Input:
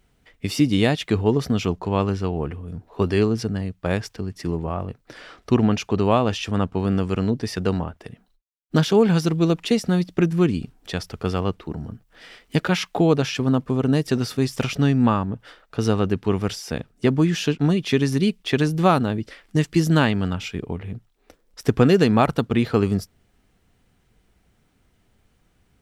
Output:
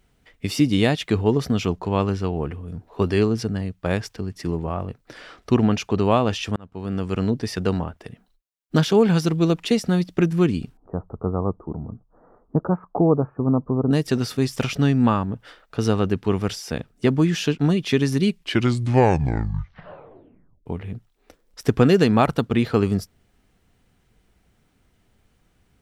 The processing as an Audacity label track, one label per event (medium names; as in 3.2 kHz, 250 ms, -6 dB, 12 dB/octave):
6.560000	7.230000	fade in
10.770000	13.910000	steep low-pass 1.2 kHz 48 dB/octave
18.220000	18.220000	tape stop 2.44 s